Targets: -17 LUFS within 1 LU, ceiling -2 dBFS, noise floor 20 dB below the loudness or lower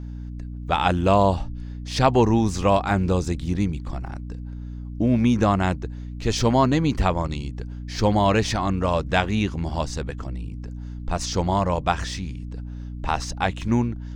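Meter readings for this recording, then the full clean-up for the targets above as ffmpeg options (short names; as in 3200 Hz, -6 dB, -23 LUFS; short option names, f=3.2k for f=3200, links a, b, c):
hum 60 Hz; harmonics up to 300 Hz; hum level -31 dBFS; loudness -23.0 LUFS; peak -4.0 dBFS; loudness target -17.0 LUFS
-> -af "bandreject=f=60:t=h:w=4,bandreject=f=120:t=h:w=4,bandreject=f=180:t=h:w=4,bandreject=f=240:t=h:w=4,bandreject=f=300:t=h:w=4"
-af "volume=6dB,alimiter=limit=-2dB:level=0:latency=1"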